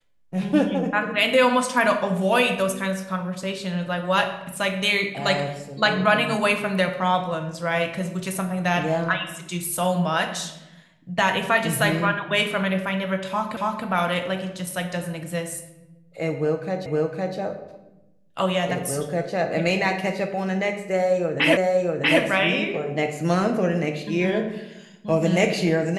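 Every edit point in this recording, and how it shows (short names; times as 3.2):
13.57 repeat of the last 0.28 s
16.86 repeat of the last 0.51 s
21.57 repeat of the last 0.64 s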